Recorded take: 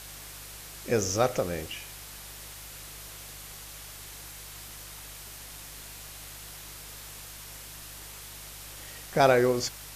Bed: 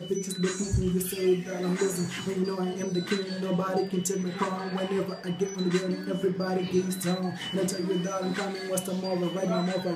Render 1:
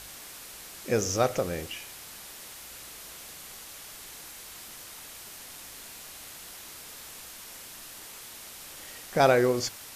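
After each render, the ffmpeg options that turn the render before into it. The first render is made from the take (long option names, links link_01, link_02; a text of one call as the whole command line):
ffmpeg -i in.wav -af "bandreject=frequency=50:width_type=h:width=4,bandreject=frequency=100:width_type=h:width=4,bandreject=frequency=150:width_type=h:width=4" out.wav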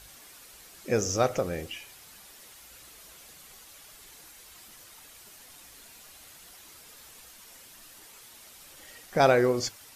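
ffmpeg -i in.wav -af "afftdn=noise_reduction=8:noise_floor=-45" out.wav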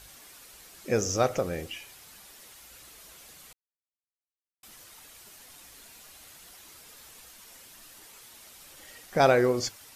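ffmpeg -i in.wav -filter_complex "[0:a]asplit=3[link_01][link_02][link_03];[link_01]atrim=end=3.53,asetpts=PTS-STARTPTS,afade=type=out:start_time=3.526:duration=0.004:curve=hsin[link_04];[link_02]atrim=start=3.53:end=4.63,asetpts=PTS-STARTPTS,volume=0[link_05];[link_03]atrim=start=4.63,asetpts=PTS-STARTPTS,afade=type=in:duration=0.004:curve=hsin[link_06];[link_04][link_05][link_06]concat=n=3:v=0:a=1" out.wav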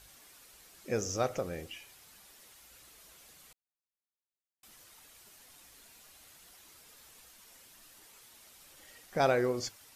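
ffmpeg -i in.wav -af "volume=-6.5dB" out.wav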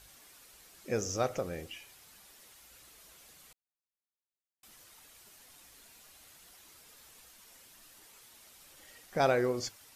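ffmpeg -i in.wav -af anull out.wav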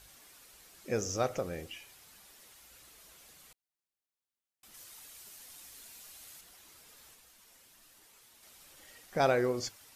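ffmpeg -i in.wav -filter_complex "[0:a]asettb=1/sr,asplit=3[link_01][link_02][link_03];[link_01]atrim=end=4.744[link_04];[link_02]atrim=start=4.74:end=6.41,asetpts=PTS-STARTPTS,afade=type=in:duration=0.004:curve=qsin,afade=type=out:start_time=1.666:duration=0.004:curve=qsin,highshelf=frequency=3300:gain=7[link_05];[link_03]atrim=start=6.406[link_06];[link_04][link_05]acrossfade=duration=0.004:curve1=hsin:curve2=qsin[link_07];[link_07][link_06]acrossfade=duration=0.004:curve1=qsin:curve2=hsin,asplit=3[link_08][link_09][link_10];[link_08]atrim=end=7.152[link_11];[link_09]atrim=start=7.148:end=8.432,asetpts=PTS-STARTPTS,volume=-3.5dB[link_12];[link_10]atrim=start=8.428[link_13];[link_11][link_12]acrossfade=duration=0.004:curve1=hsin:curve2=hsin[link_14];[link_14][link_13]acrossfade=duration=0.004:curve1=hsin:curve2=hsin" out.wav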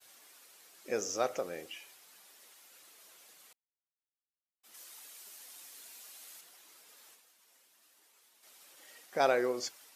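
ffmpeg -i in.wav -af "agate=range=-33dB:threshold=-55dB:ratio=3:detection=peak,highpass=320" out.wav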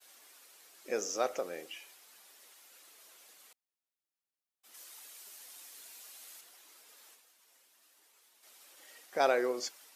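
ffmpeg -i in.wav -af "highpass=220" out.wav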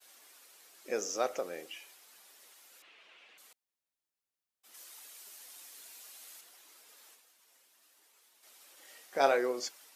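ffmpeg -i in.wav -filter_complex "[0:a]asettb=1/sr,asplit=3[link_01][link_02][link_03];[link_01]atrim=end=2.824[link_04];[link_02]atrim=start=2.82:end=3.38,asetpts=PTS-STARTPTS,afade=type=in:duration=0.004:curve=qsin,afade=type=out:start_time=0.556:duration=0.004:curve=qsin,lowpass=frequency=2700:width_type=q:width=2.9[link_05];[link_03]atrim=start=3.376[link_06];[link_04][link_05]acrossfade=duration=0.004:curve1=hsin:curve2=qsin[link_07];[link_07][link_06]acrossfade=duration=0.004:curve1=qsin:curve2=hsin,asettb=1/sr,asplit=3[link_08][link_09][link_10];[link_08]atrim=end=8.834[link_11];[link_09]atrim=start=8.83:end=9.37,asetpts=PTS-STARTPTS,afade=type=in:duration=0.004:curve=qsin,afade=type=out:start_time=0.536:duration=0.004:curve=qsin,asplit=2[link_12][link_13];[link_13]adelay=22,volume=-6.5dB[link_14];[link_12][link_14]amix=inputs=2:normalize=0,atrim=end_sample=23814[link_15];[link_10]atrim=start=9.366[link_16];[link_11][link_15]acrossfade=duration=0.004:curve1=hsin:curve2=qsin[link_17];[link_17][link_16]acrossfade=duration=0.004:curve1=qsin:curve2=hsin" out.wav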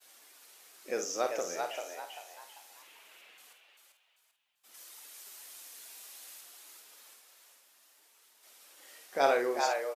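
ffmpeg -i in.wav -filter_complex "[0:a]asplit=2[link_01][link_02];[link_02]adelay=50,volume=-8dB[link_03];[link_01][link_03]amix=inputs=2:normalize=0,asplit=2[link_04][link_05];[link_05]asplit=4[link_06][link_07][link_08][link_09];[link_06]adelay=392,afreqshift=99,volume=-4.5dB[link_10];[link_07]adelay=784,afreqshift=198,volume=-13.6dB[link_11];[link_08]adelay=1176,afreqshift=297,volume=-22.7dB[link_12];[link_09]adelay=1568,afreqshift=396,volume=-31.9dB[link_13];[link_10][link_11][link_12][link_13]amix=inputs=4:normalize=0[link_14];[link_04][link_14]amix=inputs=2:normalize=0" out.wav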